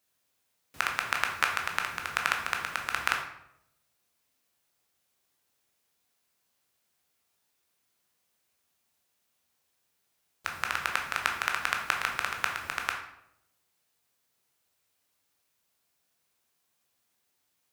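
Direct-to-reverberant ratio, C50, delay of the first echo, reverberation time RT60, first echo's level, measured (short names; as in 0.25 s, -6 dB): 1.5 dB, 6.0 dB, none, 0.80 s, none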